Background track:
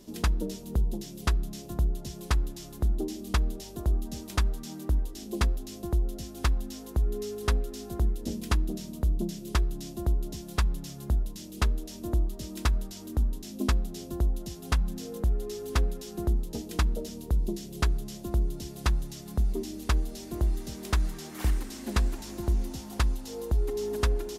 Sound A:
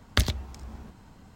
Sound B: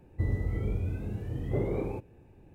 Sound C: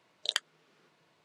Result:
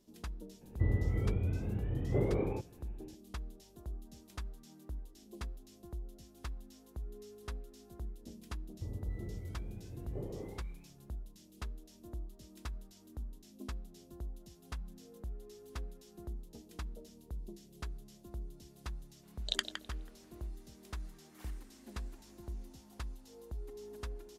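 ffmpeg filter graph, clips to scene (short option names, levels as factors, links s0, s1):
-filter_complex "[2:a]asplit=2[s0][s1];[0:a]volume=0.141[s2];[s0]aresample=8000,aresample=44100[s3];[s1]acrossover=split=1500[s4][s5];[s5]adelay=280[s6];[s4][s6]amix=inputs=2:normalize=0[s7];[3:a]asplit=2[s8][s9];[s9]adelay=163,lowpass=f=2000:p=1,volume=0.596,asplit=2[s10][s11];[s11]adelay=163,lowpass=f=2000:p=1,volume=0.36,asplit=2[s12][s13];[s13]adelay=163,lowpass=f=2000:p=1,volume=0.36,asplit=2[s14][s15];[s15]adelay=163,lowpass=f=2000:p=1,volume=0.36,asplit=2[s16][s17];[s17]adelay=163,lowpass=f=2000:p=1,volume=0.36[s18];[s8][s10][s12][s14][s16][s18]amix=inputs=6:normalize=0[s19];[s3]atrim=end=2.54,asetpts=PTS-STARTPTS,volume=0.841,afade=t=in:d=0.004:c=hsin,afade=t=out:st=2.536:d=0.004:c=hsin,adelay=610[s20];[s7]atrim=end=2.54,asetpts=PTS-STARTPTS,volume=0.237,afade=t=in:d=0.004:c=hsin,afade=t=out:st=2.536:d=0.004:c=hsin,adelay=8620[s21];[s19]atrim=end=1.24,asetpts=PTS-STARTPTS,volume=0.668,afade=t=in:d=0.004:c=hsin,afade=t=out:st=1.236:d=0.004:c=hsin,adelay=19230[s22];[s2][s20][s21][s22]amix=inputs=4:normalize=0"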